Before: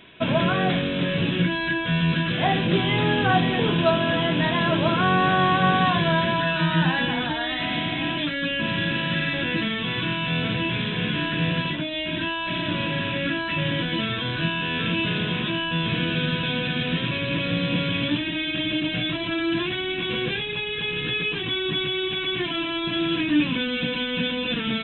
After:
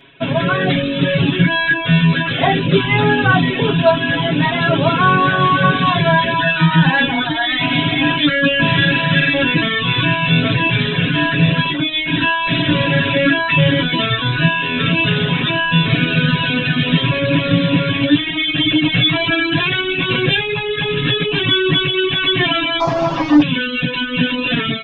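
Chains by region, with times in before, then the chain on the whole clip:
22.80–23.42 s: one-bit delta coder 32 kbps, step -40 dBFS + high-order bell 810 Hz +11 dB 1.3 oct
whole clip: reverb removal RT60 1.4 s; comb 7.3 ms, depth 100%; level rider

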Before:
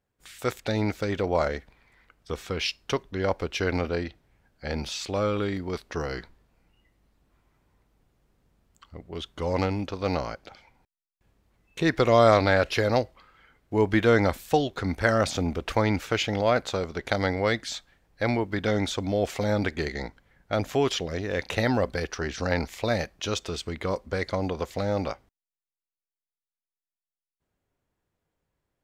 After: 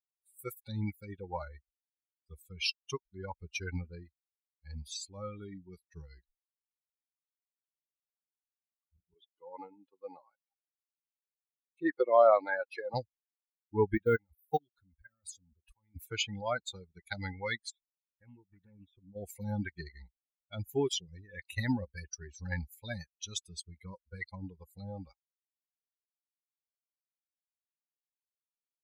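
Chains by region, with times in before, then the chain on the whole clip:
9.14–12.94 s: high-pass 460 Hz + tilt EQ -3 dB/octave
13.95–15.96 s: block-companded coder 7-bit + level held to a coarse grid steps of 19 dB
17.70–19.16 s: compression 2:1, threshold -35 dBFS + Savitzky-Golay filter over 25 samples + loudspeaker Doppler distortion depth 0.41 ms
whole clip: expander on every frequency bin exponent 3; treble shelf 6.9 kHz +9 dB; trim -1 dB

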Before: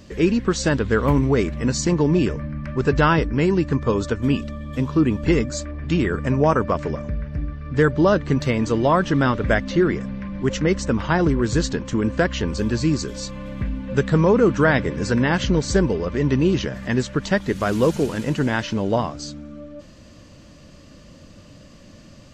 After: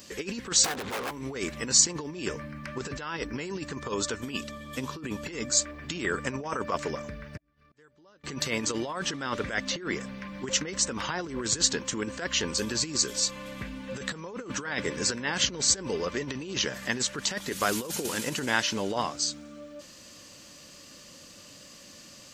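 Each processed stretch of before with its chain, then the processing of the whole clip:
0.64–1.11 s: bass shelf 390 Hz +4.5 dB + integer overflow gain 11 dB + overdrive pedal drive 32 dB, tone 1 kHz, clips at -10 dBFS
7.37–8.24 s: inverted gate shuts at -23 dBFS, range -29 dB + compression 16:1, threshold -47 dBFS
whole clip: band-stop 640 Hz, Q 12; compressor with a negative ratio -21 dBFS, ratio -0.5; RIAA curve recording; trim -5 dB

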